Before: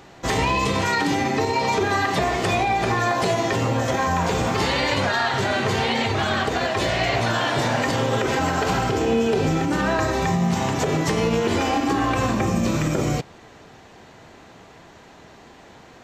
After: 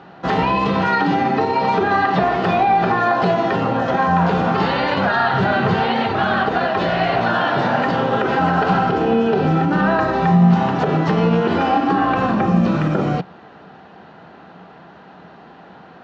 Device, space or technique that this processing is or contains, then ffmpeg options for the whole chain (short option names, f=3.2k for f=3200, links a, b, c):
guitar cabinet: -filter_complex "[0:a]highpass=100,equalizer=f=110:t=q:w=4:g=-7,equalizer=f=180:t=q:w=4:g=9,equalizer=f=770:t=q:w=4:g=5,equalizer=f=1.4k:t=q:w=4:g=6,equalizer=f=2.2k:t=q:w=4:g=-7,equalizer=f=3.5k:t=q:w=4:g=-4,lowpass=f=3.8k:w=0.5412,lowpass=f=3.8k:w=1.3066,asettb=1/sr,asplit=3[a][b][c];[a]atrim=end=5.154[d];[b]atrim=start=5.15:end=5.75,asetpts=PTS-STARTPTS,afade=t=in:d=0.004:c=qsin,afade=t=out:st=0.596:d=0.004:c=qsin,equalizer=f=120:t=o:w=1.2:g=7[e];[c]atrim=start=5.746[f];[d][e]acrossfade=d=0.004:c1=hsin:c2=qsin[g];[g][f]acrossfade=d=0.004:c1=qsin:c2=hsin,volume=2.5dB"